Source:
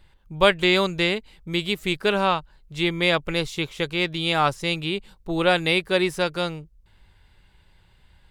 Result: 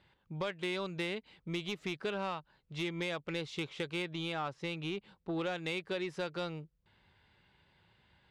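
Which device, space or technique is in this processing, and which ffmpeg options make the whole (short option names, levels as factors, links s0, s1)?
AM radio: -filter_complex "[0:a]highpass=120,lowpass=4300,acompressor=threshold=0.0501:ratio=8,asoftclip=type=tanh:threshold=0.075,asettb=1/sr,asplit=3[s0][s1][s2];[s0]atrim=end=4.024[s3];[s1]atrim=start=4.02:end=5.39,asetpts=PTS-STARTPTS,afade=t=in:d=0.004:c=qsin,afade=t=out:st=1.366:d=0.004:c=qsin,highshelf=f=5100:g=-8[s4];[s2]atrim=start=5.386[s5];[s3][s4]acrossfade=d=0.004:c1=hsin:c2=qsin[s6];[s6][s5]acrossfade=d=0.004:c1=qsin:c2=hsin,volume=0.562"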